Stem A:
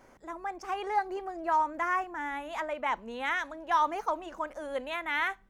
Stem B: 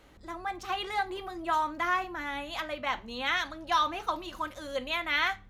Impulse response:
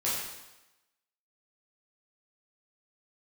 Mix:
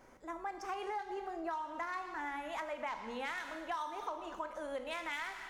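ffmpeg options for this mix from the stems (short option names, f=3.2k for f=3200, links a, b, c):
-filter_complex "[0:a]volume=-4.5dB,asplit=2[a][b];[b]volume=-13dB[c];[1:a]flanger=delay=18:depth=5.8:speed=0.68,equalizer=f=4k:t=o:w=2.7:g=5.5,aeval=exprs='0.251*(cos(1*acos(clip(val(0)/0.251,-1,1)))-cos(1*PI/2))+0.0447*(cos(7*acos(clip(val(0)/0.251,-1,1)))-cos(7*PI/2))':c=same,volume=-16dB,asplit=2[d][e];[e]volume=-7.5dB[f];[2:a]atrim=start_sample=2205[g];[c][f]amix=inputs=2:normalize=0[h];[h][g]afir=irnorm=-1:irlink=0[i];[a][d][i]amix=inputs=3:normalize=0,acompressor=threshold=-36dB:ratio=12"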